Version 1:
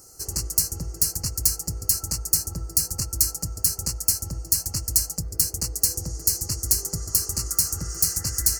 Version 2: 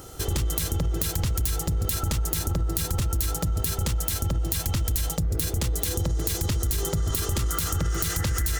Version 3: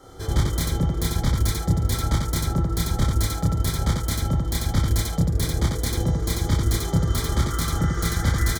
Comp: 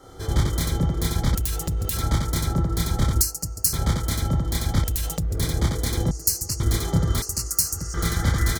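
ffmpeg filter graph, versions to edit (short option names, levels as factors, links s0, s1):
-filter_complex "[1:a]asplit=2[s0][s1];[0:a]asplit=3[s2][s3][s4];[2:a]asplit=6[s5][s6][s7][s8][s9][s10];[s5]atrim=end=1.352[s11];[s0]atrim=start=1.348:end=1.972[s12];[s6]atrim=start=1.968:end=3.212[s13];[s2]atrim=start=3.208:end=3.732[s14];[s7]atrim=start=3.728:end=4.842[s15];[s1]atrim=start=4.838:end=5.372[s16];[s8]atrim=start=5.368:end=6.112[s17];[s3]atrim=start=6.108:end=6.602[s18];[s9]atrim=start=6.598:end=7.222[s19];[s4]atrim=start=7.218:end=7.942[s20];[s10]atrim=start=7.938[s21];[s11][s12]acrossfade=d=0.004:c1=hsin:c2=hsin[s22];[s22][s13]acrossfade=d=0.004:c1=hsin:c2=hsin[s23];[s23][s14]acrossfade=d=0.004:c1=hsin:c2=hsin[s24];[s24][s15]acrossfade=d=0.004:c1=hsin:c2=hsin[s25];[s25][s16]acrossfade=d=0.004:c1=hsin:c2=hsin[s26];[s26][s17]acrossfade=d=0.004:c1=hsin:c2=hsin[s27];[s27][s18]acrossfade=d=0.004:c1=hsin:c2=hsin[s28];[s28][s19]acrossfade=d=0.004:c1=hsin:c2=hsin[s29];[s29][s20]acrossfade=d=0.004:c1=hsin:c2=hsin[s30];[s30][s21]acrossfade=d=0.004:c1=hsin:c2=hsin"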